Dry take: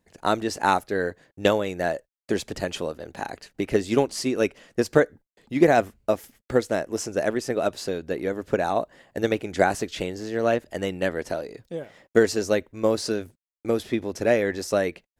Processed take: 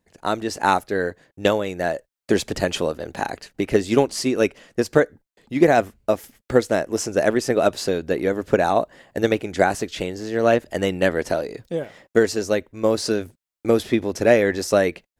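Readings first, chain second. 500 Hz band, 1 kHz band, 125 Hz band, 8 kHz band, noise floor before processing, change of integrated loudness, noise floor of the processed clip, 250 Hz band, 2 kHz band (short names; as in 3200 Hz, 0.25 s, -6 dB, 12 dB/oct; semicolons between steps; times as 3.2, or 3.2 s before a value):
+4.0 dB, +3.0 dB, +4.0 dB, +4.0 dB, under -85 dBFS, +3.5 dB, under -85 dBFS, +3.5 dB, +3.5 dB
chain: AGC gain up to 9 dB; gain -1 dB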